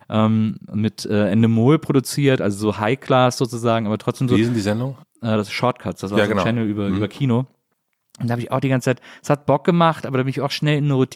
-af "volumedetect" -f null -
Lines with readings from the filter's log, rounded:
mean_volume: -19.1 dB
max_volume: -3.8 dB